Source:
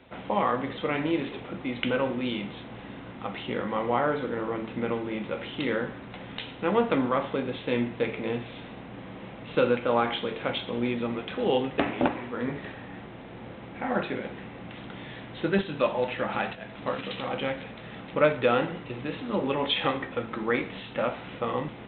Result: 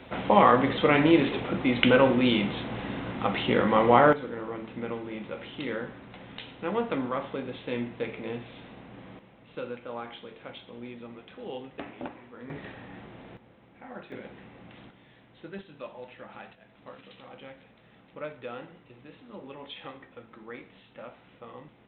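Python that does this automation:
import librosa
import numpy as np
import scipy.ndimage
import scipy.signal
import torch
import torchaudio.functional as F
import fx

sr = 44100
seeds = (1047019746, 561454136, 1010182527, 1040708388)

y = fx.gain(x, sr, db=fx.steps((0.0, 7.0), (4.13, -5.0), (9.19, -13.5), (12.5, -3.5), (13.37, -15.0), (14.12, -8.0), (14.9, -16.0)))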